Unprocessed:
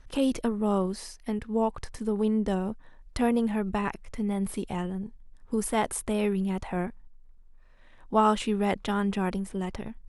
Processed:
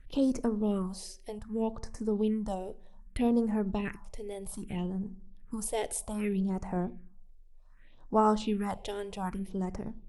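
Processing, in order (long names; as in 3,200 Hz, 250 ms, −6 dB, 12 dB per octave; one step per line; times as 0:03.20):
convolution reverb RT60 0.60 s, pre-delay 7 ms, DRR 15.5 dB
all-pass phaser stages 4, 0.64 Hz, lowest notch 190–3,300 Hz
level −2.5 dB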